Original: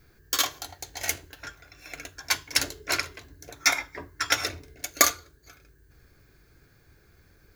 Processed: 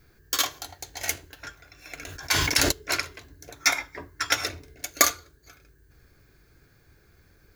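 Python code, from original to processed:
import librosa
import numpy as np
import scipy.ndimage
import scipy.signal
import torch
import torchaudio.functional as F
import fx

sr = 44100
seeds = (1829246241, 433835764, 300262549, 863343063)

y = fx.sustainer(x, sr, db_per_s=27.0, at=(1.97, 2.72))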